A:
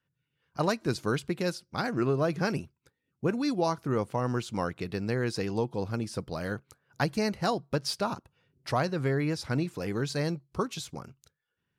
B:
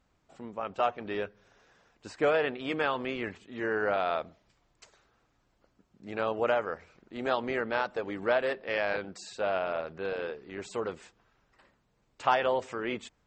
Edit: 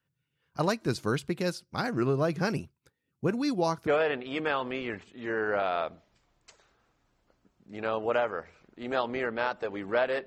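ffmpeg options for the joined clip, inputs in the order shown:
ffmpeg -i cue0.wav -i cue1.wav -filter_complex "[0:a]apad=whole_dur=10.26,atrim=end=10.26,atrim=end=3.872[link_01];[1:a]atrim=start=2.208:end=8.6[link_02];[link_01][link_02]acrossfade=duration=0.004:curve1=hsin:curve2=hsin" out.wav

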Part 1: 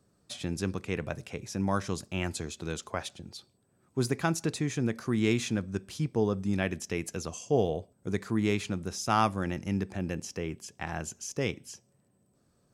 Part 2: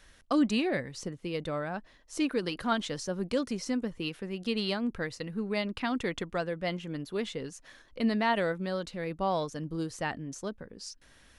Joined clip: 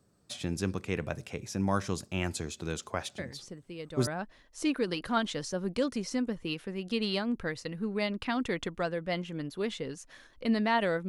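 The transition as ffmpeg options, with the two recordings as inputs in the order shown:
ffmpeg -i cue0.wav -i cue1.wav -filter_complex "[1:a]asplit=2[link_01][link_02];[0:a]apad=whole_dur=11.08,atrim=end=11.08,atrim=end=4.072[link_03];[link_02]atrim=start=1.618:end=8.63[link_04];[link_01]atrim=start=0.73:end=1.62,asetpts=PTS-STARTPTS,volume=-7.5dB,afade=type=in:duration=0.004:curve=hsin,afade=type=out:start_time=0.886:duration=0.004:curve=hsin,adelay=3180[link_05];[link_03][link_04]acrossfade=duration=0.004:curve1=hsin:curve2=hsin[link_06];[link_06][link_05]amix=inputs=2:normalize=0" out.wav

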